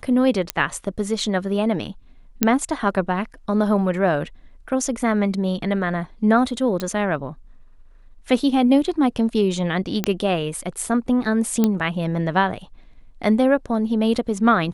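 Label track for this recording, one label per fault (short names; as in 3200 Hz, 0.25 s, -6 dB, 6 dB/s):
0.500000	0.500000	pop -4 dBFS
2.430000	2.430000	pop -1 dBFS
6.800000	6.800000	pop -12 dBFS
10.040000	10.040000	pop -5 dBFS
11.640000	11.640000	pop -6 dBFS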